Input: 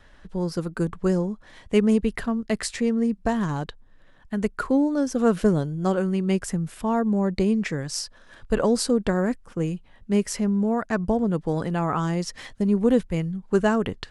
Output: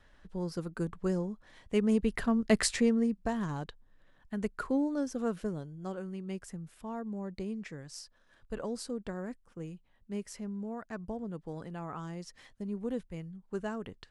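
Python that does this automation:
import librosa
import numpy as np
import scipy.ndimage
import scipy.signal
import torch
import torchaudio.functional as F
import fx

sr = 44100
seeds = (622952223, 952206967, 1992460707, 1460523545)

y = fx.gain(x, sr, db=fx.line((1.79, -9.0), (2.61, 1.0), (3.23, -9.0), (5.0, -9.0), (5.5, -16.0)))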